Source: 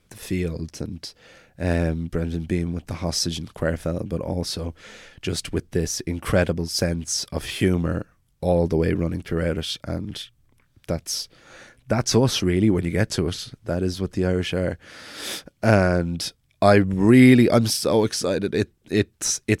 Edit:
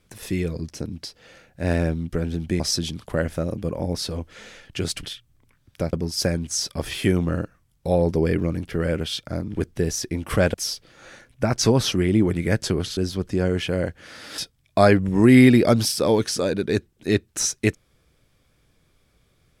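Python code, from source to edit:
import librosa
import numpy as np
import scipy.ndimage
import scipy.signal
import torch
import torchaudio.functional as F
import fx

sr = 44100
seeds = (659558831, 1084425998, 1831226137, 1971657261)

y = fx.edit(x, sr, fx.cut(start_s=2.6, length_s=0.48),
    fx.swap(start_s=5.51, length_s=0.99, other_s=10.12, other_length_s=0.9),
    fx.cut(start_s=13.45, length_s=0.36),
    fx.cut(start_s=15.22, length_s=1.01), tone=tone)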